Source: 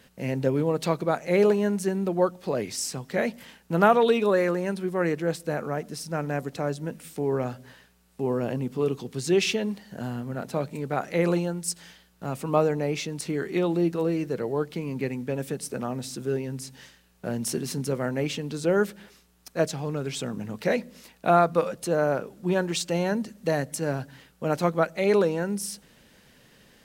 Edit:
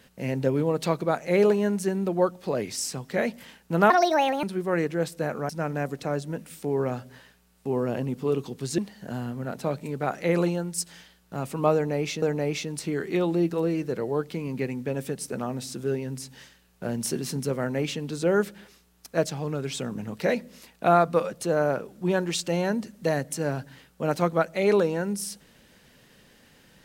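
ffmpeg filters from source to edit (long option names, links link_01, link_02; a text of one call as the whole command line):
ffmpeg -i in.wav -filter_complex "[0:a]asplit=6[link_01][link_02][link_03][link_04][link_05][link_06];[link_01]atrim=end=3.904[link_07];[link_02]atrim=start=3.9:end=4.71,asetpts=PTS-STARTPTS,asetrate=67032,aresample=44100[link_08];[link_03]atrim=start=4.706:end=5.772[link_09];[link_04]atrim=start=6.028:end=9.322[link_10];[link_05]atrim=start=9.678:end=13.122[link_11];[link_06]atrim=start=12.638[link_12];[link_07][link_08]acrossfade=duration=0.004:curve1=hsin:curve2=hsin[link_13];[link_13][link_09]acrossfade=duration=0.004:curve1=hsin:curve2=hsin[link_14];[link_14][link_10]acrossfade=duration=0.004:curve1=hsin:curve2=hsin[link_15];[link_15][link_11]acrossfade=duration=0.004:curve1=hsin:curve2=hsin[link_16];[link_16][link_12]acrossfade=duration=0.004:curve1=hsin:curve2=hsin" out.wav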